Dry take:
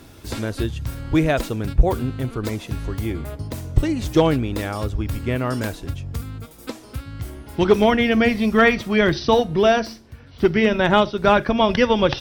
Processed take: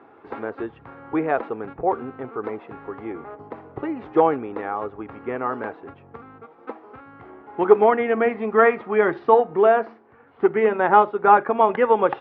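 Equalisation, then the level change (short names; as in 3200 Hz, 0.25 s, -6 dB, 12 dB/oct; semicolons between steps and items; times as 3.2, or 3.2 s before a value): speaker cabinet 310–2000 Hz, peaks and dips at 430 Hz +7 dB, 810 Hz +10 dB, 1200 Hz +7 dB; notch 610 Hz, Q 16; -3.5 dB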